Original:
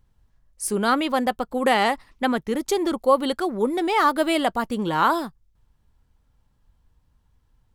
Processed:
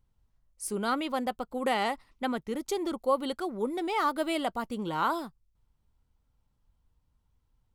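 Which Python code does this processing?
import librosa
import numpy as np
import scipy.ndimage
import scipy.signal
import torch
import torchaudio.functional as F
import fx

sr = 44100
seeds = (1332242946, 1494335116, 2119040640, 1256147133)

y = fx.notch(x, sr, hz=1700.0, q=10.0)
y = F.gain(torch.from_numpy(y), -8.5).numpy()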